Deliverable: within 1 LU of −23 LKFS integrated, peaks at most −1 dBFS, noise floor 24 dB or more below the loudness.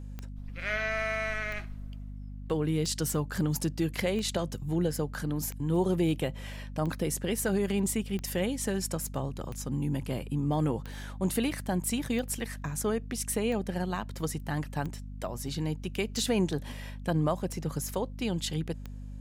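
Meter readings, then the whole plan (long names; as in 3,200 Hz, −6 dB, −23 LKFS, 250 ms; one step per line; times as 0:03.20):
number of clicks 15; mains hum 50 Hz; hum harmonics up to 250 Hz; level of the hum −38 dBFS; integrated loudness −31.5 LKFS; sample peak −15.5 dBFS; target loudness −23.0 LKFS
→ click removal
mains-hum notches 50/100/150/200/250 Hz
level +8.5 dB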